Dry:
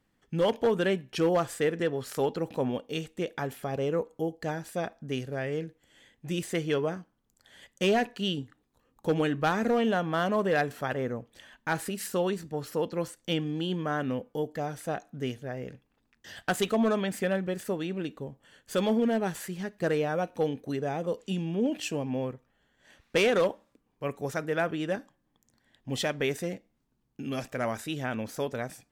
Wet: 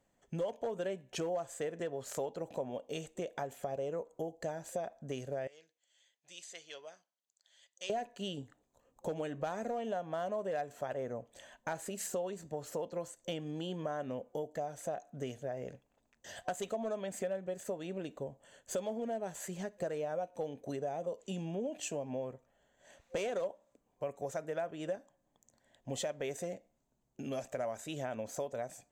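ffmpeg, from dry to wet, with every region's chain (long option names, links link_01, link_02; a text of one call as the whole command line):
ffmpeg -i in.wav -filter_complex "[0:a]asettb=1/sr,asplit=3[link_01][link_02][link_03];[link_01]atrim=end=5.474[link_04];[link_02]atrim=start=5.47:end=7.9,asetpts=PTS-STARTPTS,afade=type=in:duration=0.004:curve=qsin,afade=type=out:start_time=2.426:duration=0.004:curve=qsin,bandpass=frequency=4500:width_type=q:width=1.7,highshelf=frequency=4500:gain=-4[link_05];[link_03]atrim=start=7.896[link_06];[link_04][link_05]acrossfade=duration=0.004:curve1=hsin:curve2=qsin[link_07];[link_07][link_06]acrossfade=duration=0.004:curve1=qsin:curve2=hsin,superequalizer=7b=1.58:8b=3.55:9b=1.78:15b=2.82,acompressor=threshold=-31dB:ratio=4,volume=-5dB" out.wav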